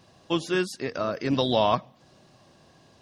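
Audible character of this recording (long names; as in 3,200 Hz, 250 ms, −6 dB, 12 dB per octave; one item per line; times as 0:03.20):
background noise floor −58 dBFS
spectral slope −4.0 dB per octave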